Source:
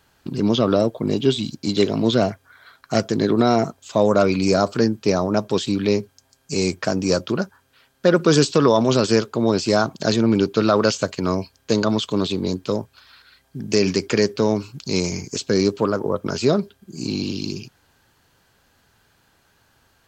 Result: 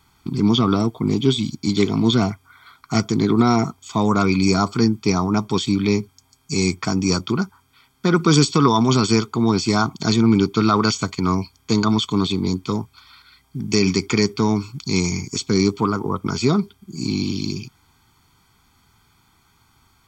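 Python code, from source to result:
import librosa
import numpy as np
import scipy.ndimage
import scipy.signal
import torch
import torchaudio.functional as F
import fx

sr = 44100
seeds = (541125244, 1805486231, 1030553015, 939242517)

y = x + 0.96 * np.pad(x, (int(0.9 * sr / 1000.0), 0))[:len(x)]
y = y * librosa.db_to_amplitude(-1.0)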